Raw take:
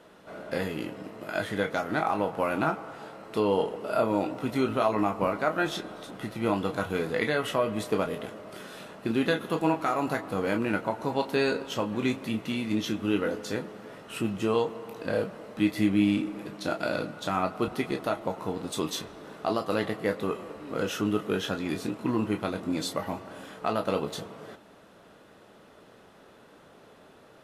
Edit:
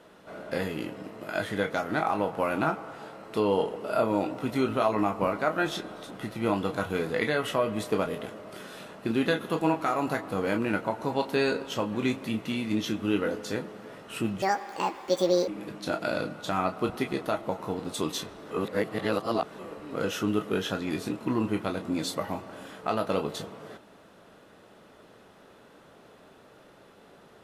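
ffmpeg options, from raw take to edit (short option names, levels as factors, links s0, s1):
-filter_complex "[0:a]asplit=5[s0][s1][s2][s3][s4];[s0]atrim=end=14.424[s5];[s1]atrim=start=14.42:end=16.26,asetpts=PTS-STARTPTS,asetrate=76734,aresample=44100,atrim=end_sample=46634,asetpts=PTS-STARTPTS[s6];[s2]atrim=start=16.256:end=19.292[s7];[s3]atrim=start=19.288:end=20.372,asetpts=PTS-STARTPTS,areverse[s8];[s4]atrim=start=20.368[s9];[s5][s6]acrossfade=d=0.004:c1=hsin:c2=hsin[s10];[s10][s7]acrossfade=d=0.004:c1=hsin:c2=hsin[s11];[s11][s8]acrossfade=d=0.004:c1=hsin:c2=hsin[s12];[s12][s9]acrossfade=d=0.004:c1=hsin:c2=hsin"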